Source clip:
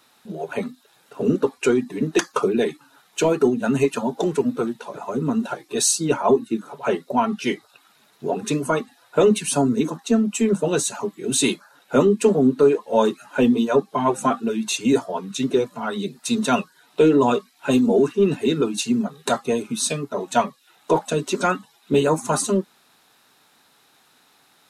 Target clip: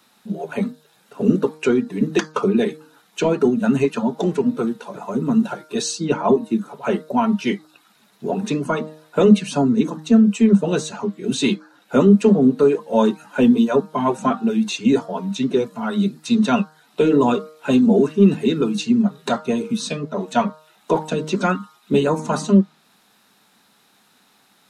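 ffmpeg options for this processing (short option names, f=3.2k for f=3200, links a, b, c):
-filter_complex "[0:a]equalizer=f=200:t=o:w=0.38:g=11,bandreject=f=155.1:t=h:w=4,bandreject=f=310.2:t=h:w=4,bandreject=f=465.3:t=h:w=4,bandreject=f=620.4:t=h:w=4,bandreject=f=775.5:t=h:w=4,bandreject=f=930.6:t=h:w=4,bandreject=f=1.0857k:t=h:w=4,bandreject=f=1.2408k:t=h:w=4,bandreject=f=1.3959k:t=h:w=4,bandreject=f=1.551k:t=h:w=4,bandreject=f=1.7061k:t=h:w=4,acrossover=split=270|6300[a][b][c];[c]acompressor=threshold=-52dB:ratio=6[d];[a][b][d]amix=inputs=3:normalize=0"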